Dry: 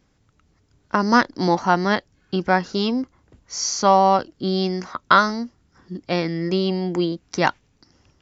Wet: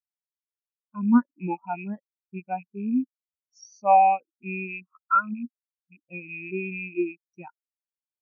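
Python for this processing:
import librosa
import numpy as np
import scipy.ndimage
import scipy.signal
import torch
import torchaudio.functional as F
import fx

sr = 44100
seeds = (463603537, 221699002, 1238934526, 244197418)

p1 = fx.rattle_buzz(x, sr, strikes_db=-29.0, level_db=-7.0)
p2 = fx.over_compress(p1, sr, threshold_db=-28.0, ratio=-1.0)
p3 = p1 + (p2 * 10.0 ** (-0.5 / 20.0))
p4 = fx.spectral_expand(p3, sr, expansion=4.0)
y = p4 * 10.0 ** (-8.0 / 20.0)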